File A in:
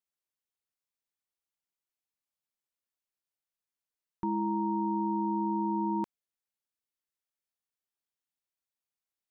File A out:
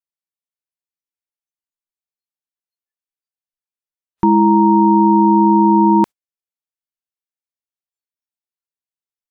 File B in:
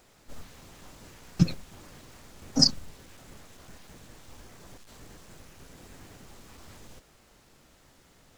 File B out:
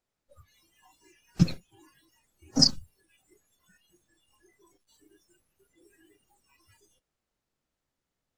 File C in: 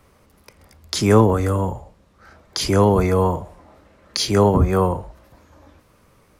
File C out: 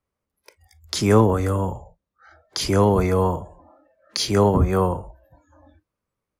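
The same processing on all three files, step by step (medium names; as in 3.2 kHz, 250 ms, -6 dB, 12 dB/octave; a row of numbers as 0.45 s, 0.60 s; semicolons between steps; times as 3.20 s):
spectral noise reduction 26 dB; peak normalisation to -3 dBFS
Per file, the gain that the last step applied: +19.0 dB, 0.0 dB, -2.0 dB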